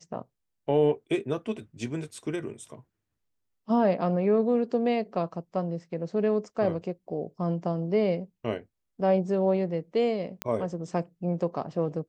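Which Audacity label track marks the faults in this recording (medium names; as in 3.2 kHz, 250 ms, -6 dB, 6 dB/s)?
10.420000	10.420000	pop -12 dBFS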